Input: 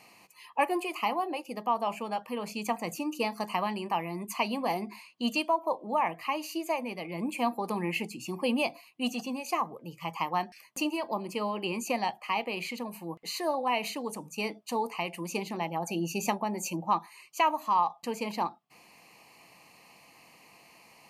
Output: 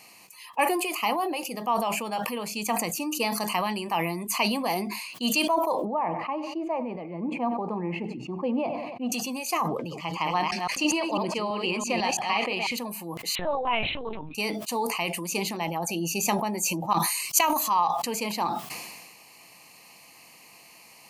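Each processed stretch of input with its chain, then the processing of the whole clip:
0:05.85–0:09.12: low-pass filter 1,000 Hz + repeating echo 93 ms, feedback 38%, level −18 dB
0:09.68–0:12.72: delay that plays each chunk backwards 166 ms, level −3.5 dB + low-pass filter 5,500 Hz
0:13.35–0:14.35: mains-hum notches 60/120/180/240/300 Hz + linear-prediction vocoder at 8 kHz pitch kept
0:16.93–0:17.70: bass and treble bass +4 dB, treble +9 dB + compressor whose output falls as the input rises −32 dBFS, ratio −0.5
whole clip: high-shelf EQ 3,500 Hz +10 dB; level that may fall only so fast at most 37 dB per second; level +1 dB

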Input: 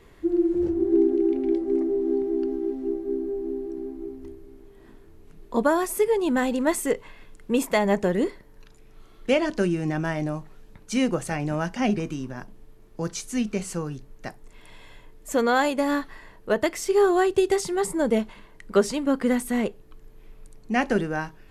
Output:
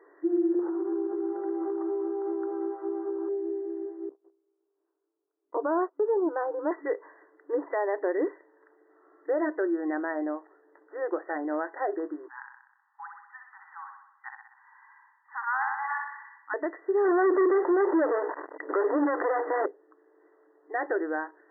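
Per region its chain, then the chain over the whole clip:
0:00.59–0:03.29: flat-topped bell 1,100 Hz +16 dB 1.1 octaves + downward compressor 12 to 1, threshold −25 dBFS
0:04.09–0:06.71: Butterworth low-pass 1,500 Hz 48 dB per octave + noise gate −36 dBFS, range −25 dB
0:12.28–0:16.54: linear-phase brick-wall high-pass 780 Hz + repeating echo 63 ms, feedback 58%, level −5 dB
0:17.05–0:19.66: low-pass filter 1,300 Hz + mains-hum notches 60/120/180/240/300/360/420/480 Hz + leveller curve on the samples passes 5
whole clip: brick-wall band-pass 280–2,000 Hz; brickwall limiter −18 dBFS; level −1 dB

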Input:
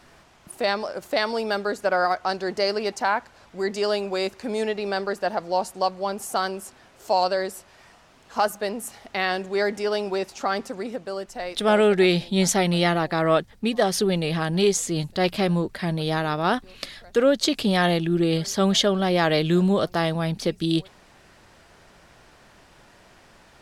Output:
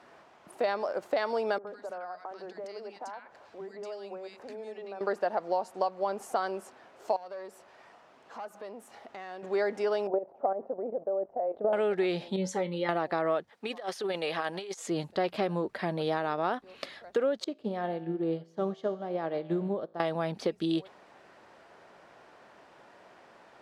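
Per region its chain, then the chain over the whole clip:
0:01.58–0:05.01: downward compressor, threshold −36 dBFS + three-band delay without the direct sound mids, lows, highs 60/90 ms, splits 260/1,500 Hz
0:07.16–0:09.43: downward compressor 3 to 1, threshold −39 dBFS + tube saturation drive 32 dB, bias 0.35
0:10.07–0:11.73: output level in coarse steps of 12 dB + low-pass with resonance 630 Hz, resonance Q 3
0:12.36–0:12.89: spectral envelope exaggerated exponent 1.5 + Butterworth band-reject 670 Hz, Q 3.9 + tuned comb filter 62 Hz, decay 0.2 s, harmonics odd, mix 70%
0:13.49–0:14.88: high-pass filter 890 Hz 6 dB per octave + compressor whose output falls as the input rises −30 dBFS, ratio −0.5
0:17.44–0:20.00: tilt shelving filter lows +6 dB, about 1,100 Hz + tuned comb filter 55 Hz, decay 1.2 s + expander for the loud parts 2.5 to 1, over −31 dBFS
whole clip: high-pass filter 570 Hz 12 dB per octave; spectral tilt −4.5 dB per octave; downward compressor 6 to 1, threshold −25 dBFS

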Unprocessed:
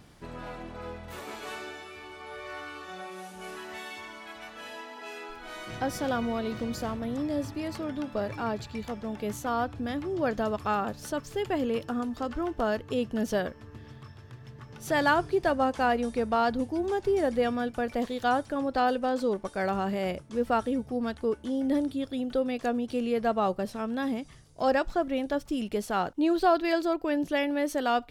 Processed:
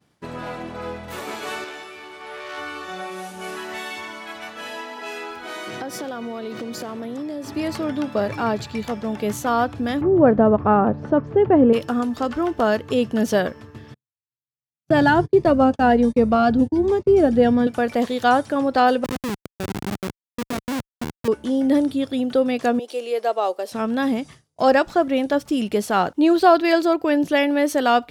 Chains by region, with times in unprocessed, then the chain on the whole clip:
0:01.64–0:02.58: high-pass filter 190 Hz 6 dB per octave + saturating transformer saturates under 2,200 Hz
0:05.44–0:07.52: high-pass filter 180 Hz + parametric band 390 Hz +7 dB 0.3 octaves + downward compressor, threshold −36 dBFS
0:10.01–0:11.73: low-pass filter 1,800 Hz + tilt shelving filter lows +7.5 dB, about 1,200 Hz
0:13.94–0:17.67: noise gate −37 dBFS, range −42 dB + spectral tilt −2.5 dB per octave + phaser whose notches keep moving one way rising 1.3 Hz
0:19.04–0:21.28: parametric band 920 Hz −9 dB 2 octaves + comparator with hysteresis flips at −29 dBFS
0:22.79–0:23.72: high-pass filter 440 Hz 24 dB per octave + parametric band 1,500 Hz −7.5 dB 1.8 octaves
whole clip: high-pass filter 100 Hz 12 dB per octave; downward expander −44 dBFS; level +9 dB

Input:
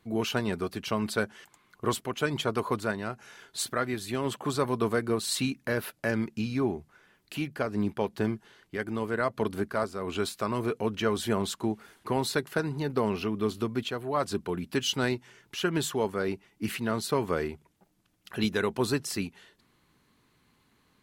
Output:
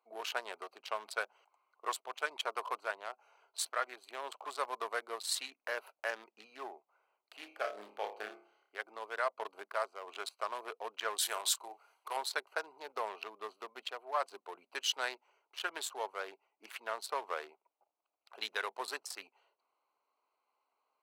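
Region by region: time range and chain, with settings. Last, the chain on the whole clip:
0:07.35–0:08.75: notch filter 980 Hz, Q 5.8 + flutter between parallel walls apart 4.9 metres, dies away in 0.47 s
0:11.18–0:12.17: spectral tilt +3 dB per octave + double-tracking delay 34 ms −9.5 dB
whole clip: adaptive Wiener filter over 25 samples; high-pass filter 640 Hz 24 dB per octave; level −2.5 dB

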